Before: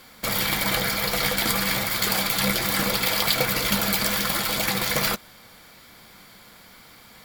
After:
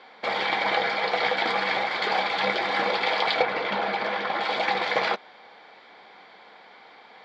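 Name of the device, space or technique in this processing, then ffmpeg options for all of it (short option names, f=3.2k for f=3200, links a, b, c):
phone earpiece: -filter_complex "[0:a]asettb=1/sr,asplit=3[a][b][c];[a]atrim=end=3.424[d];[b]atrim=start=3.42:end=4.41,asetpts=PTS-STARTPTS,afade=t=in:d=0.004:c=qsin,afade=t=out:st=0.986:d=0.004:c=qsin,lowpass=f=2.3k:p=1[e];[c]atrim=start=4.406[f];[d][e]acrossfade=d=0.004:c1=hsin:c2=qsin[g];[g][f]acrossfade=d=0.004:c1=qsin:c2=hsin,highpass=420,equalizer=f=420:t=q:w=4:g=5,equalizer=f=800:t=q:w=4:g=8,equalizer=f=1.3k:t=q:w=4:g=-4,equalizer=f=2.8k:t=q:w=4:g=-5,lowpass=f=3.5k:w=0.5412,lowpass=f=3.5k:w=1.3066,volume=2dB"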